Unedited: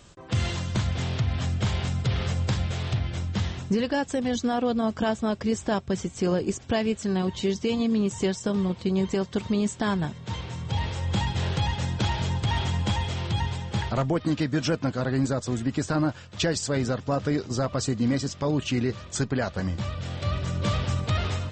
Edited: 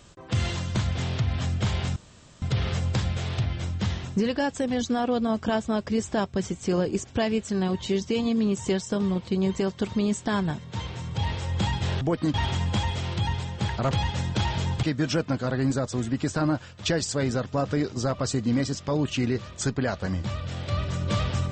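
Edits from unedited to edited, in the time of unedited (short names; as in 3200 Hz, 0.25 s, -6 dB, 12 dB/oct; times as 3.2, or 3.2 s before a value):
1.96 insert room tone 0.46 s
11.55–12.47 swap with 14.04–14.37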